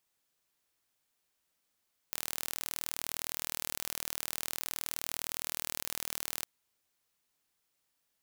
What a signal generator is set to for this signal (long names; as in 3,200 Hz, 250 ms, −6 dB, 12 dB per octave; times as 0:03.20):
impulse train 39.5 per second, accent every 0, −8.5 dBFS 4.31 s